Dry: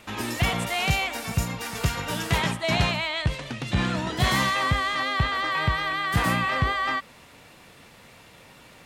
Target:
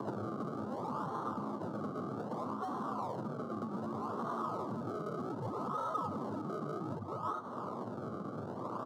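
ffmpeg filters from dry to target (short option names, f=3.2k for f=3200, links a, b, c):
-af "alimiter=limit=-20.5dB:level=0:latency=1,aecho=1:1:7.5:0.59,aecho=1:1:393:0.316,acrusher=samples=35:mix=1:aa=0.000001:lfo=1:lforange=35:lforate=0.64,aemphasis=mode=reproduction:type=50fm,asoftclip=type=hard:threshold=-25dB,afreqshift=95,bandreject=f=2.5k:w=8,acompressor=threshold=-47dB:ratio=10,firequalizer=gain_entry='entry(770,0);entry(1200,10);entry(1800,-19);entry(4200,-9)':delay=0.05:min_phase=1,volume=9.5dB"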